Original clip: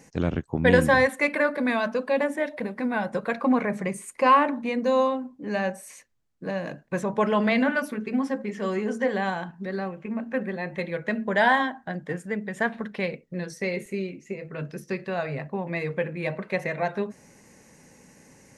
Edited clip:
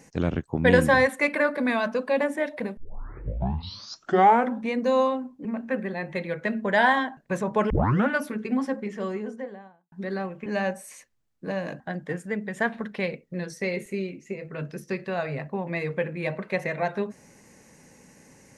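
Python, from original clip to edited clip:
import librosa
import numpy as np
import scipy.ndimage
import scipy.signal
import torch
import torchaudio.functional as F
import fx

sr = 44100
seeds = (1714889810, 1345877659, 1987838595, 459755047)

y = fx.studio_fade_out(x, sr, start_s=8.26, length_s=1.28)
y = fx.edit(y, sr, fx.tape_start(start_s=2.77, length_s=1.96),
    fx.swap(start_s=5.45, length_s=1.34, other_s=10.08, other_length_s=1.72),
    fx.tape_start(start_s=7.32, length_s=0.38), tone=tone)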